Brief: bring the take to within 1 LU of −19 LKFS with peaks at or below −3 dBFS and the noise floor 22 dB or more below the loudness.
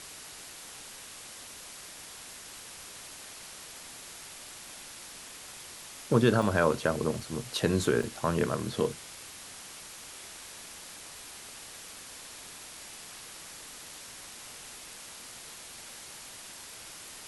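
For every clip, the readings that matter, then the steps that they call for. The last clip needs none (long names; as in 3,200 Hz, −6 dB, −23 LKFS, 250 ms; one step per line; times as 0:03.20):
number of dropouts 3; longest dropout 2.9 ms; background noise floor −47 dBFS; target noise floor −57 dBFS; integrated loudness −35.0 LKFS; sample peak −10.5 dBFS; target loudness −19.0 LKFS
→ repair the gap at 0:06.42/0:07.20/0:08.03, 2.9 ms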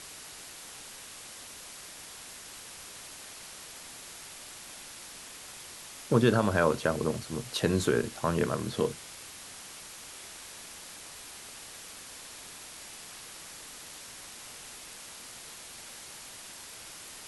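number of dropouts 0; background noise floor −47 dBFS; target noise floor −57 dBFS
→ noise reduction from a noise print 10 dB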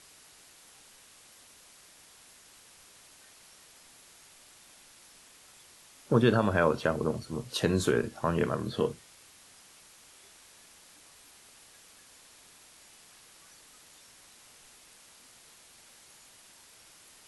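background noise floor −57 dBFS; integrated loudness −28.5 LKFS; sample peak −10.5 dBFS; target loudness −19.0 LKFS
→ level +9.5 dB
brickwall limiter −3 dBFS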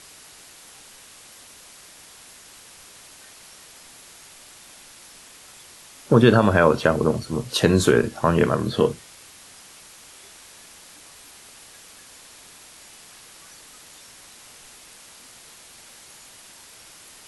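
integrated loudness −19.5 LKFS; sample peak −3.0 dBFS; background noise floor −47 dBFS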